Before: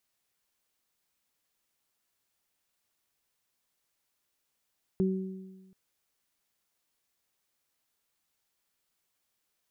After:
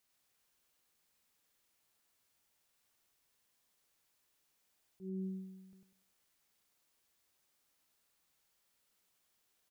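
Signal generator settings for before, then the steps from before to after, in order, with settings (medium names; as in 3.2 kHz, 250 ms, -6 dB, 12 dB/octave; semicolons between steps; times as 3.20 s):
additive tone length 0.73 s, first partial 189 Hz, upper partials -3 dB, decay 1.32 s, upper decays 1.05 s, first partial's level -23.5 dB
compression 2:1, threshold -31 dBFS; slow attack 269 ms; on a send: feedback delay 99 ms, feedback 29%, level -3 dB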